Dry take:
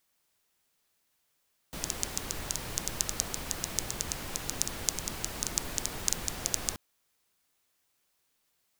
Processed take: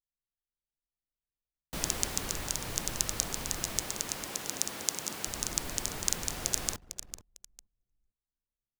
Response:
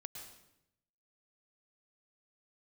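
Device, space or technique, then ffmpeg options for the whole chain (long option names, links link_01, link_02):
voice memo with heavy noise removal: -filter_complex "[0:a]asettb=1/sr,asplit=3[link_01][link_02][link_03];[link_01]atrim=end=3.814[link_04];[link_02]atrim=start=3.81:end=5.27,asetpts=PTS-STARTPTS,afade=type=in:duration=0.004:curve=qsin,afade=type=out:start_time=1.456:duration=0.004:curve=qsin,highpass=180[link_05];[link_03]atrim=start=5.266[link_06];[link_04][link_05]acrossfade=duration=0.004:curve1=hsin:curve2=qsin[link_07];[link_07][link_06]acrossfade=duration=0.004:curve1=qsin:curve2=hsin,aecho=1:1:451|902|1353:0.299|0.0716|0.0172,anlmdn=0.0251,dynaudnorm=framelen=630:gausssize=3:maxgain=7.5dB,volume=-1dB"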